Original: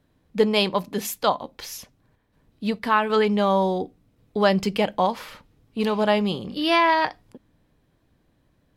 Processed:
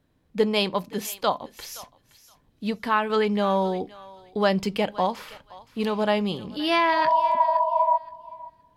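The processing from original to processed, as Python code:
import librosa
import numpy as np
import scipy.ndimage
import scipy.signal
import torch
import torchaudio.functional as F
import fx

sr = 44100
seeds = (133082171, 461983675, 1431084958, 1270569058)

p1 = fx.spec_repair(x, sr, seeds[0], start_s=6.96, length_s=0.99, low_hz=420.0, high_hz=1100.0, source='before')
p2 = p1 + fx.echo_thinned(p1, sr, ms=520, feedback_pct=21, hz=1100.0, wet_db=-16.0, dry=0)
y = F.gain(torch.from_numpy(p2), -2.5).numpy()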